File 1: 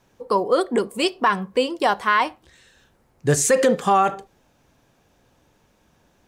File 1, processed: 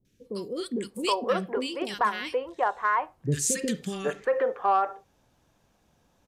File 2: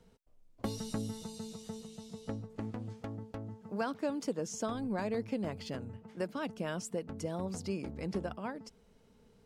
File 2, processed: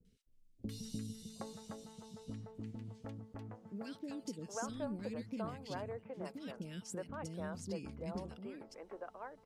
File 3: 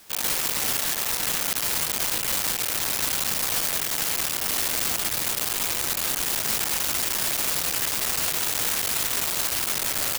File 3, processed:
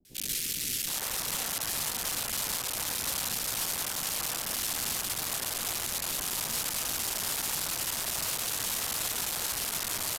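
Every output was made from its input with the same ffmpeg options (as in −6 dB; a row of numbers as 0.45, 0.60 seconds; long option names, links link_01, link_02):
-filter_complex "[0:a]acrossover=split=390|2000[link_01][link_02][link_03];[link_03]adelay=50[link_04];[link_02]adelay=770[link_05];[link_01][link_05][link_04]amix=inputs=3:normalize=0,aeval=exprs='0.422*(cos(1*acos(clip(val(0)/0.422,-1,1)))-cos(1*PI/2))+0.0376*(cos(3*acos(clip(val(0)/0.422,-1,1)))-cos(3*PI/2))+0.0106*(cos(5*acos(clip(val(0)/0.422,-1,1)))-cos(5*PI/2))':channel_layout=same,aresample=32000,aresample=44100,volume=-3.5dB"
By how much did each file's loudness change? −7.5, −6.5, −7.0 LU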